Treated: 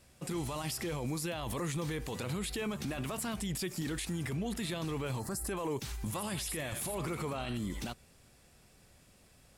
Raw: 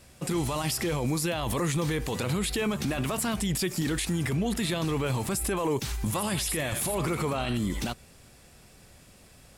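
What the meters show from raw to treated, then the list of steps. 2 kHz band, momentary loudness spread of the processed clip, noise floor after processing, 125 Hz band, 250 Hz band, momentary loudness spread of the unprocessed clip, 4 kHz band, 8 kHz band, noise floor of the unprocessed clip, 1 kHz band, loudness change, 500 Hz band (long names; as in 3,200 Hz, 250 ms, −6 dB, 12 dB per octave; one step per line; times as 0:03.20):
−8.0 dB, 2 LU, −62 dBFS, −8.0 dB, −8.0 dB, 2 LU, −8.0 dB, −8.0 dB, −54 dBFS, −8.0 dB, −8.0 dB, −8.0 dB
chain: gain on a spectral selection 0:05.20–0:05.47, 2,000–4,000 Hz −15 dB
level −8 dB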